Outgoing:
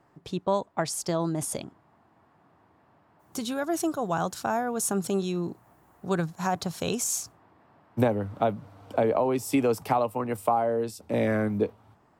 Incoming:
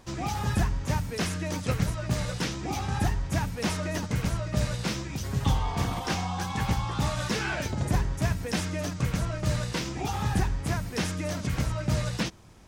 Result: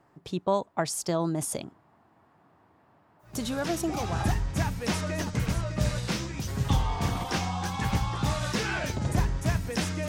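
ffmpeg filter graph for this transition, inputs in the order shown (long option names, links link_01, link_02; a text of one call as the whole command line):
ffmpeg -i cue0.wav -i cue1.wav -filter_complex "[0:a]apad=whole_dur=10.08,atrim=end=10.08,atrim=end=4.47,asetpts=PTS-STARTPTS[link_01];[1:a]atrim=start=1.97:end=8.84,asetpts=PTS-STARTPTS[link_02];[link_01][link_02]acrossfade=duration=1.26:curve1=qsin:curve2=qsin" out.wav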